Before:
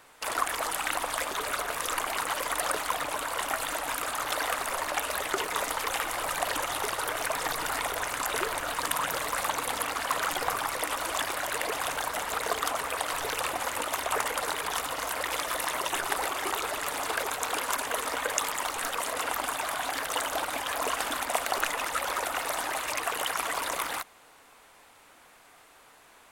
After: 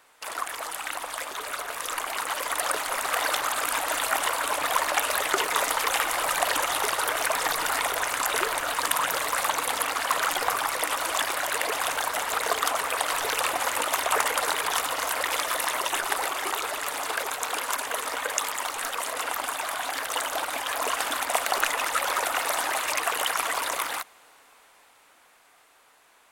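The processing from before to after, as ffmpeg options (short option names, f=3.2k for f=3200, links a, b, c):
-filter_complex "[0:a]asplit=3[a][b][c];[a]atrim=end=2.892[d];[b]atrim=start=2.888:end=4.782,asetpts=PTS-STARTPTS,areverse[e];[c]atrim=start=4.778[f];[d][e]acrossfade=d=0.004:c1=hsin:c2=hsin[g];[g][f]acrossfade=d=0.004:c1=hsin:c2=hsin,lowshelf=f=290:g=-9.5,dynaudnorm=f=310:g=17:m=11.5dB,volume=-2.5dB"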